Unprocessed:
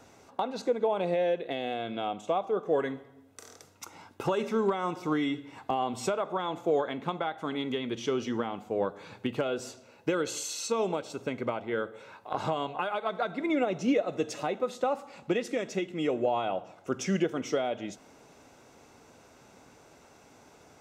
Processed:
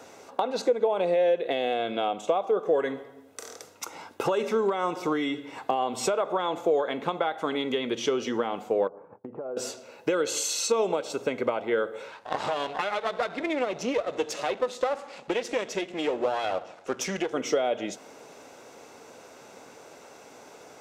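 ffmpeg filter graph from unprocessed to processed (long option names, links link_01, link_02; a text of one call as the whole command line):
ffmpeg -i in.wav -filter_complex "[0:a]asettb=1/sr,asplit=3[link_01][link_02][link_03];[link_01]atrim=end=8.874[link_04];[link_02]atrim=start=8.87:end=9.57,asetpts=PTS-STARTPTS,afade=type=in:duration=0.004:curve=qsin,afade=type=out:start_time=0.696:duration=0.004:curve=qsin,lowpass=frequency=1100:width=0.5412,lowpass=frequency=1100:width=1.3066,agate=range=-33dB:threshold=-43dB:ratio=3:release=100:detection=peak,acompressor=threshold=-41dB:ratio=6:attack=3.2:release=140:knee=1:detection=peak[link_05];[link_03]atrim=start=9.566[link_06];[link_04][link_05]acrossfade=duration=0.004:curve1=hsin:curve2=qsin[link_07];[link_07][link_06]acrossfade=duration=0.004:curve1=qsin:curve2=hsin,asettb=1/sr,asplit=3[link_08][link_09][link_10];[link_08]atrim=end=12.084[link_11];[link_09]atrim=start=12.08:end=17.33,asetpts=PTS-STARTPTS,afade=type=in:duration=0.004:curve=qsin,afade=type=out:start_time=5.246:duration=0.004:curve=qsin,aeval=exprs='if(lt(val(0),0),0.251*val(0),val(0))':channel_layout=same,adynamicsmooth=sensitivity=3:basefreq=7000,highshelf=frequency=4000:gain=8.5[link_12];[link_10]atrim=start=17.326[link_13];[link_11][link_12]acrossfade=duration=0.004:curve1=hsin:curve2=qsin[link_14];[link_14][link_13]acrossfade=duration=0.004:curve1=qsin:curve2=hsin,acompressor=threshold=-31dB:ratio=3,highpass=frequency=350:poles=1,equalizer=frequency=490:width_type=o:width=0.67:gain=5,volume=7.5dB" out.wav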